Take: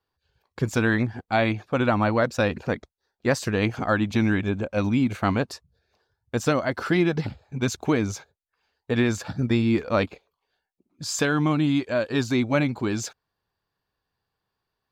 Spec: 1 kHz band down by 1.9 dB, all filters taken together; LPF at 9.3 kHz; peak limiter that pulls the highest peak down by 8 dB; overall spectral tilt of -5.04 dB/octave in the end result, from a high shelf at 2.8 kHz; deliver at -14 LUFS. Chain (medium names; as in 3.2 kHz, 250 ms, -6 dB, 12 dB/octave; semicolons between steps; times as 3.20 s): low-pass 9.3 kHz; peaking EQ 1 kHz -3.5 dB; treble shelf 2.8 kHz +4.5 dB; trim +13 dB; peak limiter -2 dBFS